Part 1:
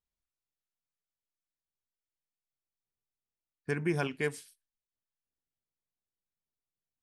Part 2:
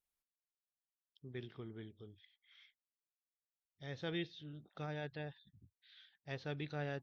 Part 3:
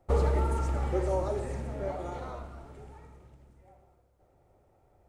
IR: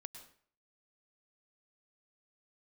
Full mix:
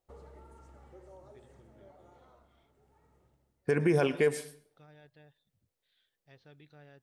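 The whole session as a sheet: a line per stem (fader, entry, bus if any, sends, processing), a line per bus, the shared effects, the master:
+2.5 dB, 0.00 s, no bus, send −4.5 dB, parametric band 510 Hz +10.5 dB 0.81 octaves
−13.5 dB, 0.00 s, bus A, send −20.5 dB, no processing
0:02.76 −20 dB → 0:03.27 −9.5 dB, 0.00 s, bus A, no send, low-shelf EQ 63 Hz −10.5 dB; notch filter 2,400 Hz, Q 17; automatic ducking −9 dB, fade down 0.50 s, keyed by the first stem
bus A: 0.0 dB, downward compressor 1.5 to 1, threshold −55 dBFS, peak gain reduction 4.5 dB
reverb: on, RT60 0.55 s, pre-delay 97 ms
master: brickwall limiter −16.5 dBFS, peak gain reduction 7 dB

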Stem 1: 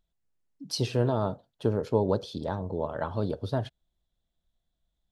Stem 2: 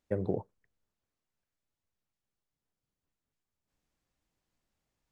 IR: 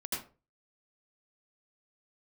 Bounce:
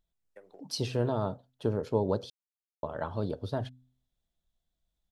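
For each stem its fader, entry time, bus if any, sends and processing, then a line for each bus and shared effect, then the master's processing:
−3.0 dB, 0.00 s, muted 0:02.30–0:02.83, no send, hum removal 127.4 Hz, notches 2
−9.0 dB, 0.25 s, no send, high-pass filter 740 Hz 12 dB per octave; downward compressor 3 to 1, threshold −43 dBFS, peak gain reduction 6.5 dB; multiband upward and downward expander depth 70%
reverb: not used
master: no processing

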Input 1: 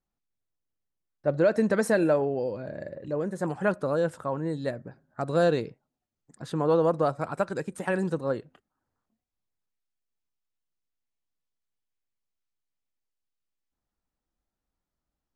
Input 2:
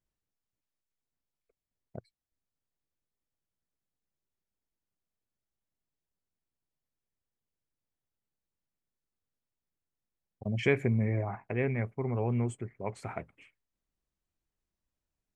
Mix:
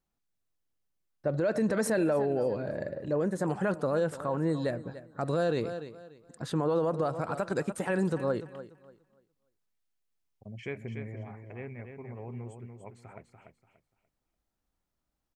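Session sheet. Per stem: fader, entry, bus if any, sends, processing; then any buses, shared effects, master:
+2.0 dB, 0.00 s, no send, echo send −17.5 dB, no processing
−11.5 dB, 0.00 s, no send, echo send −6.5 dB, no processing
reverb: not used
echo: repeating echo 291 ms, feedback 25%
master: brickwall limiter −20 dBFS, peak gain reduction 9.5 dB

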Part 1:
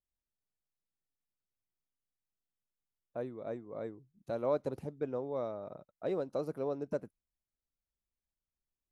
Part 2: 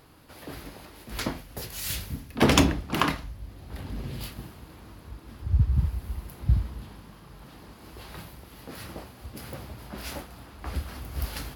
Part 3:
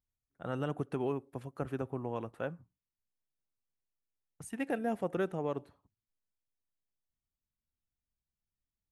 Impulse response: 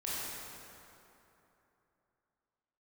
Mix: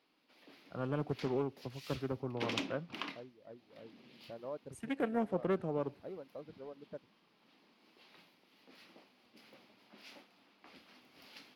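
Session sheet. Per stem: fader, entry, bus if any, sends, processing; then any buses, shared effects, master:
−10.5 dB, 0.00 s, no send, adaptive Wiener filter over 41 samples; reverb reduction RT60 1.8 s
−18.5 dB, 0.00 s, no send, Chebyshev high-pass filter 220 Hz, order 3; flat-topped bell 3,500 Hz +10 dB
−1.0 dB, 0.30 s, no send, multiband upward and downward expander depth 40%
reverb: not used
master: high-shelf EQ 3,900 Hz −11 dB; highs frequency-modulated by the lows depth 0.34 ms

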